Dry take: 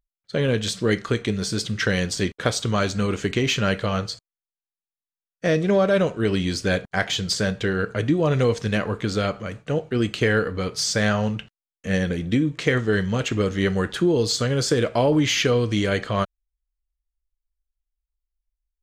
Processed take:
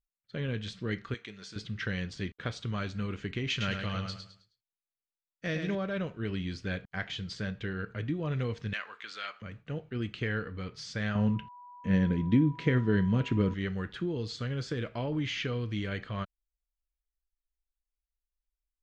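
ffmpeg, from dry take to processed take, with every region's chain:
-filter_complex "[0:a]asettb=1/sr,asplit=3[a][b][c];[a]atrim=end=1.144[d];[b]atrim=start=1.14:end=1.56,asetpts=PTS-STARTPTS,afade=t=in:d=0.004:c=qsin,afade=t=out:st=0.416:d=0.004:c=qsin,highpass=f=840:p=1,equalizer=f=6.7k:t=o:w=0.44:g=3.5[e];[c]atrim=start=1.556[f];[d][e]acrossfade=d=0.004:c1=hsin:c2=qsin[g];[g][f]acrossfade=d=0.004:c1=qsin:c2=hsin,asettb=1/sr,asplit=3[h][i][j];[h]atrim=end=3.504[k];[i]atrim=start=3.5:end=5.75,asetpts=PTS-STARTPTS,afade=t=in:d=0.004:c=qsin,afade=t=out:st=2.246:d=0.004:c=qsin,highshelf=f=2.6k:g=8.5,aecho=1:1:105|210|315|420:0.501|0.16|0.0513|0.0164,atrim=end_sample=99225[l];[j]atrim=start=5.746[m];[k][l]acrossfade=d=0.004:c1=hsin:c2=qsin[n];[n][m]acrossfade=d=0.004:c1=qsin:c2=hsin,asettb=1/sr,asplit=3[o][p][q];[o]atrim=end=8.734[r];[p]atrim=start=8.73:end=9.42,asetpts=PTS-STARTPTS,afade=t=in:d=0.004:c=qsin,afade=t=out:st=0.686:d=0.004:c=qsin,highpass=1.2k,acontrast=30[s];[q]atrim=start=9.416[t];[r][s]acrossfade=d=0.004:c1=hsin:c2=qsin[u];[u][t]acrossfade=d=0.004:c1=qsin:c2=hsin,asettb=1/sr,asplit=3[v][w][x];[v]atrim=end=11.154[y];[w]atrim=start=11.15:end=13.54,asetpts=PTS-STARTPTS,afade=t=in:d=0.004:c=qsin,afade=t=out:st=2.386:d=0.004:c=qsin,aeval=exprs='val(0)+0.0178*sin(2*PI*980*n/s)':c=same,equalizer=f=230:w=0.4:g=9.5[z];[x]atrim=start=13.536[aa];[y][z]acrossfade=d=0.004:c1=hsin:c2=qsin[ab];[ab][aa]acrossfade=d=0.004:c1=qsin:c2=hsin,lowpass=2.9k,equalizer=f=600:w=0.58:g=-9.5,volume=-8dB"

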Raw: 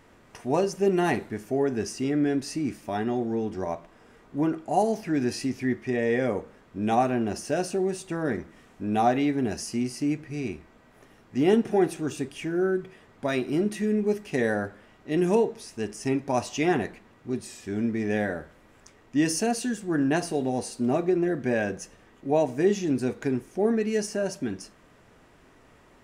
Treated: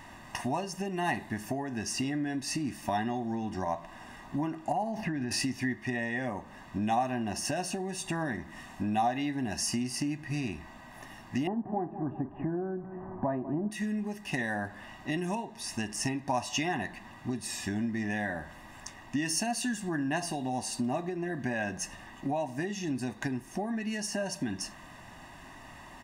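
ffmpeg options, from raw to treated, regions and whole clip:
-filter_complex "[0:a]asettb=1/sr,asplit=3[a][b][c];[a]atrim=end=4.724[d];[b]atrim=start=4.72:end=5.31,asetpts=PTS-STARTPTS,afade=t=in:d=0.004:c=qsin,afade=t=out:st=0.586:d=0.004:c=qsin,bass=f=250:g=3,treble=f=4k:g=-13,acompressor=threshold=-29dB:ratio=4:attack=3.2:release=140:knee=1:detection=peak[e];[c]atrim=start=5.306[f];[d][e]acrossfade=d=0.004:c1=hsin:c2=qsin[g];[g][f]acrossfade=d=0.004:c1=qsin:c2=hsin,asettb=1/sr,asplit=3[h][i][j];[h]atrim=end=11.474[k];[i]atrim=start=11.47:end=13.71,asetpts=PTS-STARTPTS,afade=t=in:d=0.004:c=qsin,afade=t=out:st=2.236:d=0.004:c=qsin,lowpass=f=1.1k:w=0.5412,lowpass=f=1.1k:w=1.3066,acontrast=29,aecho=1:1:193|386|579:0.158|0.0586|0.0217,atrim=end_sample=98784[l];[j]atrim=start=13.706[m];[k][l]acrossfade=d=0.004:c1=hsin:c2=qsin[n];[n][m]acrossfade=d=0.004:c1=qsin:c2=hsin,acompressor=threshold=-35dB:ratio=6,lowshelf=f=250:g=-6.5,aecho=1:1:1.1:0.85,volume=7dB"

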